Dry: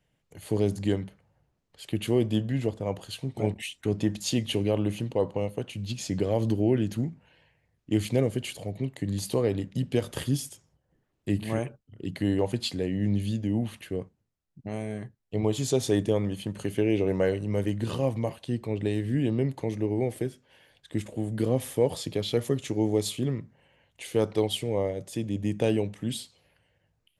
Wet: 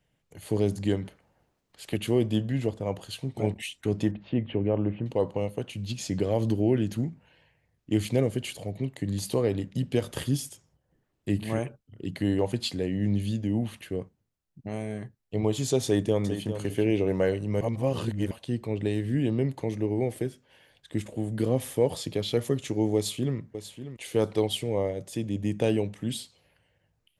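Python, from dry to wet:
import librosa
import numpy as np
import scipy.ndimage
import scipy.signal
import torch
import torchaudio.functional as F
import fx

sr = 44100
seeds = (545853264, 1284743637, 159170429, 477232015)

y = fx.spec_clip(x, sr, under_db=12, at=(1.04, 1.96), fade=0.02)
y = fx.bessel_lowpass(y, sr, hz=1600.0, order=6, at=(4.11, 5.06))
y = fx.echo_throw(y, sr, start_s=15.84, length_s=0.72, ms=400, feedback_pct=15, wet_db=-10.0)
y = fx.echo_throw(y, sr, start_s=22.95, length_s=0.42, ms=590, feedback_pct=10, wet_db=-11.5)
y = fx.edit(y, sr, fx.reverse_span(start_s=17.61, length_s=0.7), tone=tone)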